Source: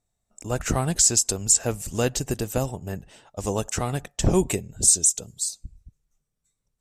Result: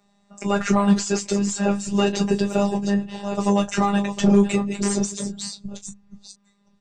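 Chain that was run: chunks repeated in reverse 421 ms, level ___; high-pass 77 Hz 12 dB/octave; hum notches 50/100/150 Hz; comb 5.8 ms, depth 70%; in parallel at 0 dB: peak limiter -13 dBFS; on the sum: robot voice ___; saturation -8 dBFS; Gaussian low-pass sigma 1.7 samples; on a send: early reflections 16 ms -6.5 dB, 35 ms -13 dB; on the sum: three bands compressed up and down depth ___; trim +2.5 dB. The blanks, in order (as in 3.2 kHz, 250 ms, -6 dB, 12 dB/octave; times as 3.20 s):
-12.5 dB, 201 Hz, 40%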